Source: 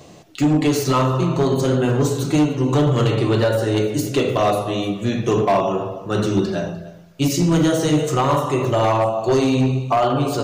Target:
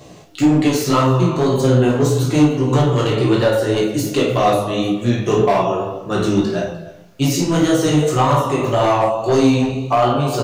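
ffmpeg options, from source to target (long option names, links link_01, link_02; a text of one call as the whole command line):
ffmpeg -i in.wav -filter_complex "[0:a]acrusher=bits=11:mix=0:aa=0.000001,flanger=delay=15:depth=5.1:speed=1.8,asplit=2[link_01][link_02];[link_02]aecho=0:1:33|49:0.398|0.335[link_03];[link_01][link_03]amix=inputs=2:normalize=0,volume=4.5dB" out.wav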